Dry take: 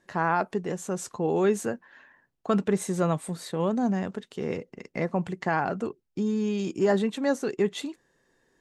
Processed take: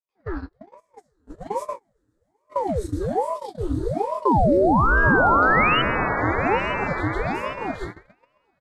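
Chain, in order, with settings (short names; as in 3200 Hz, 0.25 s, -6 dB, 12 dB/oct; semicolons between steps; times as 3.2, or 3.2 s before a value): Chebyshev high-pass 170 Hz, order 3; doubler 14 ms -7.5 dB; flange 1.5 Hz, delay 5.8 ms, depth 1.1 ms, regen -73%; EQ curve 230 Hz 0 dB, 540 Hz -27 dB, 1500 Hz -11 dB, 2600 Hz -18 dB, 4000 Hz -2 dB, 6700 Hz -12 dB, 12000 Hz -8 dB; shoebox room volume 770 m³, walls furnished, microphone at 3.3 m; painted sound rise, 4.25–5.82, 310–2200 Hz -19 dBFS; swelling echo 0.132 s, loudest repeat 5, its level -14.5 dB; gate -30 dBFS, range -32 dB; dynamic EQ 2700 Hz, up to -7 dB, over -49 dBFS, Q 1.6; ring modulator with a swept carrier 460 Hz, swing 80%, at 1.2 Hz; gain +5 dB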